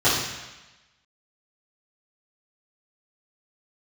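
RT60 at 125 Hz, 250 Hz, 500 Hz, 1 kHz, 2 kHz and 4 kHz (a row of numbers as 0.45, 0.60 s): 1.0, 1.0, 1.0, 1.1, 1.2, 1.1 s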